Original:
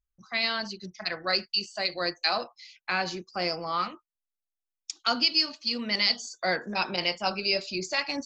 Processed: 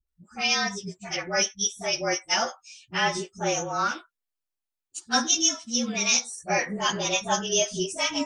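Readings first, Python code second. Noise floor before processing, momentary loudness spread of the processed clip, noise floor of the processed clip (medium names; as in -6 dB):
under -85 dBFS, 10 LU, under -85 dBFS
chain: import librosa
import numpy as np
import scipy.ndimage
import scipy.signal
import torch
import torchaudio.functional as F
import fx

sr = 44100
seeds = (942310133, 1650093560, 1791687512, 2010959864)

y = fx.partial_stretch(x, sr, pct=108)
y = fx.dispersion(y, sr, late='highs', ms=73.0, hz=370.0)
y = F.gain(torch.from_numpy(y), 6.0).numpy()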